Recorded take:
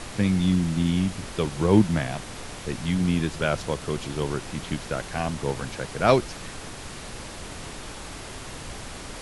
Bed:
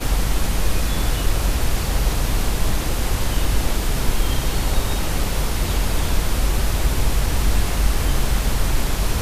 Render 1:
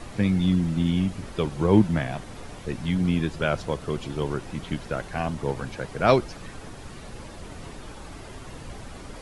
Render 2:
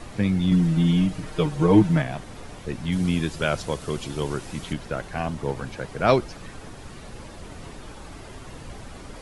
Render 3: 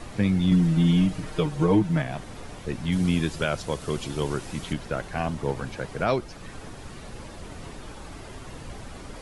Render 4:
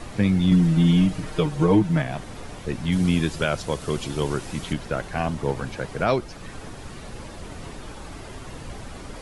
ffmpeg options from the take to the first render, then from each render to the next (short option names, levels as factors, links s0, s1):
-af "afftdn=nr=9:nf=-39"
-filter_complex "[0:a]asettb=1/sr,asplit=3[s0][s1][s2];[s0]atrim=end=0.514[s3];[s1]atrim=start=0.51:end=2.02,asetpts=PTS-STARTPTS,afade=t=in:d=0.004:c=qsin,afade=t=out:st=1.506:d=0.004:c=qsin,aecho=1:1:6.5:0.91,atrim=end_sample=66591[s4];[s2]atrim=start=2.016[s5];[s3][s4]acrossfade=d=0.004:c1=hsin:c2=qsin[s6];[s6][s5]acrossfade=d=0.004:c1=qsin:c2=hsin,asettb=1/sr,asplit=3[s7][s8][s9];[s7]atrim=end=2.924[s10];[s8]atrim=start=2.92:end=4.73,asetpts=PTS-STARTPTS,afade=t=in:d=0.004:c=qsin,afade=t=out:st=1.806:d=0.004:c=qsin,highshelf=f=4000:g=9.5[s11];[s9]atrim=start=4.726[s12];[s10][s11]acrossfade=d=0.004:c1=hsin:c2=qsin[s13];[s13][s12]acrossfade=d=0.004:c1=qsin:c2=hsin"
-af "alimiter=limit=0.266:level=0:latency=1:release=452"
-af "volume=1.33"